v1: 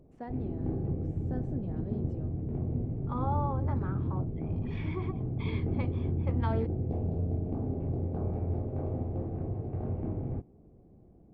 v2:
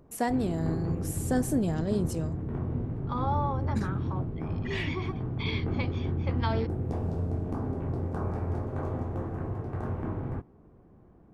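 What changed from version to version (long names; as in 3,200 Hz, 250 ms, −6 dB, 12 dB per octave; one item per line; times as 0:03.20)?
first voice +11.5 dB
background: add flat-topped bell 1,300 Hz +11 dB 1.2 octaves
master: remove head-to-tape spacing loss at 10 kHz 39 dB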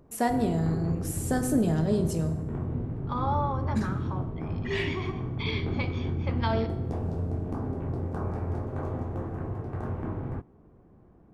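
reverb: on, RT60 1.1 s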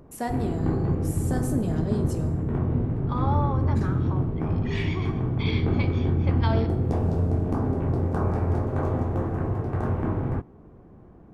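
first voice −4.0 dB
background +7.0 dB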